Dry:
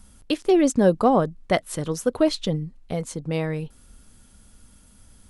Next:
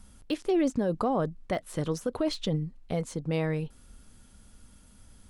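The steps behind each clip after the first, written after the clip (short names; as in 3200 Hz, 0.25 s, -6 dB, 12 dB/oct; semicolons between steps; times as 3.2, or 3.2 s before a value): de-esser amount 65%; high shelf 8100 Hz -5 dB; limiter -17 dBFS, peak gain reduction 10.5 dB; gain -2 dB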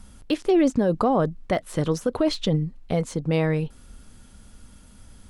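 high shelf 8000 Hz -4.5 dB; gain +6.5 dB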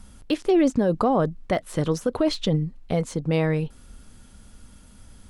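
nothing audible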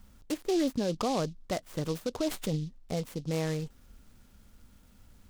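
noise-modulated delay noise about 4200 Hz, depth 0.06 ms; gain -9 dB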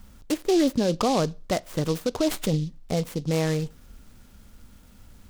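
reverb RT60 0.35 s, pre-delay 32 ms, DRR 23.5 dB; gain +7 dB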